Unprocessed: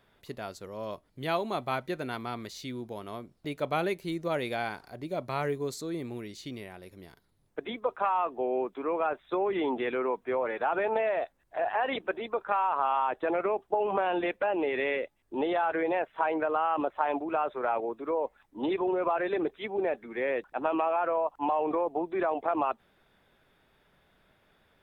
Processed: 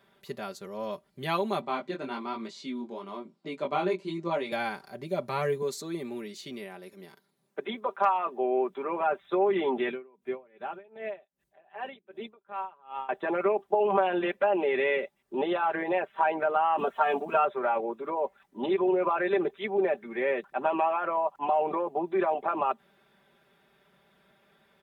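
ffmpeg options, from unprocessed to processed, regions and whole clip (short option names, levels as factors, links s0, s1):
-filter_complex "[0:a]asettb=1/sr,asplit=3[s0][s1][s2];[s0]atrim=end=1.614[s3];[s1]atrim=start=1.61:end=4.52,asetpts=PTS-STARTPTS,afade=t=in:d=0.004:c=qsin,afade=t=out:st=2.906:d=0.004:c=qsin,flanger=delay=17.5:depth=4.4:speed=1.1,highpass=f=160:w=0.5412,highpass=f=160:w=1.3066,equalizer=f=290:t=q:w=4:g=9,equalizer=f=1000:t=q:w=4:g=6,equalizer=f=1700:t=q:w=4:g=-4,equalizer=f=6000:t=q:w=4:g=-5,lowpass=f=7800:w=0.5412,lowpass=f=7800:w=1.3066[s4];[s2]atrim=start=4.516[s5];[s3][s4]acrossfade=d=0.004:c1=hsin:c2=qsin[s6];[s6][s5]acrossfade=d=0.004:c1=qsin:c2=hsin,asettb=1/sr,asplit=3[s7][s8][s9];[s7]atrim=end=5.624[s10];[s8]atrim=start=5.62:end=8.7,asetpts=PTS-STARTPTS,afade=t=in:d=0.004:c=qsin,afade=t=out:st=3.076:d=0.004:c=qsin,highpass=180,asoftclip=type=hard:threshold=0.158[s11];[s9]atrim=start=8.696[s12];[s10][s11]acrossfade=d=0.004:c1=hsin:c2=qsin[s13];[s13][s12]acrossfade=d=0.004:c1=qsin:c2=hsin,asettb=1/sr,asplit=3[s14][s15][s16];[s14]atrim=end=9.914[s17];[s15]atrim=start=9.91:end=13.09,asetpts=PTS-STARTPTS,afade=t=in:d=0.004:c=qsin,afade=t=out:st=3.176:d=0.004:c=qsin,equalizer=f=1100:w=0.5:g=-10,aeval=exprs='val(0)*pow(10,-26*(0.5-0.5*cos(2*PI*2.6*n/s))/20)':c=same[s18];[s16]atrim=start=13.086[s19];[s17][s18]acrossfade=d=0.004:c1=hsin:c2=qsin[s20];[s20][s19]acrossfade=d=0.004:c1=qsin:c2=hsin,asettb=1/sr,asplit=3[s21][s22][s23];[s21]atrim=end=16.784[s24];[s22]atrim=start=16.78:end=17.45,asetpts=PTS-STARTPTS,afade=t=in:d=0.004:c=qsin,afade=t=out:st=0.666:d=0.004:c=qsin,bass=f=250:g=2,treble=f=4000:g=8,aecho=1:1:4.4:0.97,atrim=end_sample=29547[s25];[s23]atrim=start=17.446[s26];[s24][s25]acrossfade=d=0.004:c1=hsin:c2=qsin[s27];[s27][s26]acrossfade=d=0.004:c1=qsin:c2=hsin,highpass=100,aecho=1:1:5.1:0.74"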